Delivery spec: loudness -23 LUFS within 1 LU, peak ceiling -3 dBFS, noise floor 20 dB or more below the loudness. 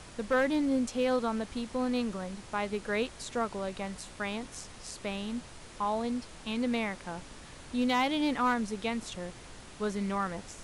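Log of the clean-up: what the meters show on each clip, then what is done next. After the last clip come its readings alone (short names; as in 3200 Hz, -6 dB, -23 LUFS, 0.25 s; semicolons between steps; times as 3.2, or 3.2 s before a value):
clipped 0.2%; flat tops at -20.5 dBFS; noise floor -49 dBFS; noise floor target -53 dBFS; loudness -32.5 LUFS; peak -20.5 dBFS; loudness target -23.0 LUFS
-> clip repair -20.5 dBFS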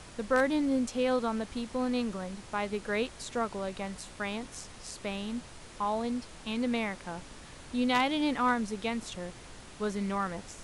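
clipped 0.0%; noise floor -49 dBFS; noise floor target -53 dBFS
-> noise print and reduce 6 dB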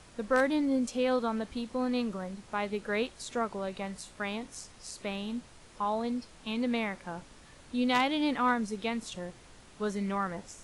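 noise floor -55 dBFS; loudness -32.5 LUFS; peak -11.5 dBFS; loudness target -23.0 LUFS
-> gain +9.5 dB; limiter -3 dBFS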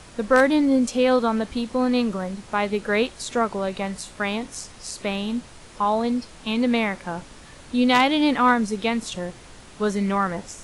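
loudness -23.0 LUFS; peak -3.0 dBFS; noise floor -45 dBFS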